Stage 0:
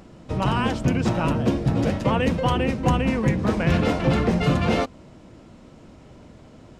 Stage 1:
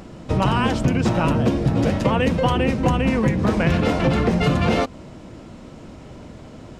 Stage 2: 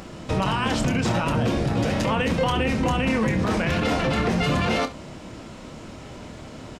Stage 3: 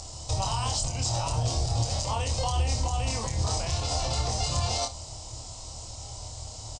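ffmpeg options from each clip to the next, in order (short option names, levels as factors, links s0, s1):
-af "acompressor=threshold=0.0794:ratio=6,volume=2.24"
-filter_complex "[0:a]tiltshelf=f=830:g=-3.5,alimiter=limit=0.133:level=0:latency=1:release=25,asplit=2[s0][s1];[s1]aecho=0:1:27|68:0.335|0.158[s2];[s0][s2]amix=inputs=2:normalize=0,volume=1.26"
-filter_complex "[0:a]firequalizer=gain_entry='entry(100,0);entry(180,-24);entry(760,-4);entry(1600,-22);entry(4800,7);entry(8200,10);entry(12000,-22)':delay=0.05:min_phase=1,alimiter=limit=0.0794:level=0:latency=1:release=112,asplit=2[s0][s1];[s1]adelay=26,volume=0.596[s2];[s0][s2]amix=inputs=2:normalize=0,volume=1.33"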